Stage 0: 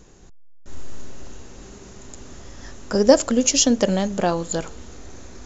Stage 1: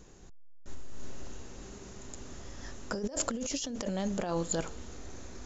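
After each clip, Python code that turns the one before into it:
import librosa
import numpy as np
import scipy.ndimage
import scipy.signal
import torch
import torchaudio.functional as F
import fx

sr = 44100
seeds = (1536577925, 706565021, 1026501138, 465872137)

y = fx.over_compress(x, sr, threshold_db=-24.0, ratio=-1.0)
y = F.gain(torch.from_numpy(y), -9.0).numpy()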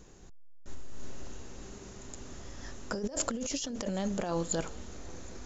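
y = x + 10.0 ** (-24.0 / 20.0) * np.pad(x, (int(767 * sr / 1000.0), 0))[:len(x)]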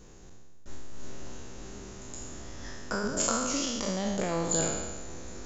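y = fx.spec_trails(x, sr, decay_s=1.37)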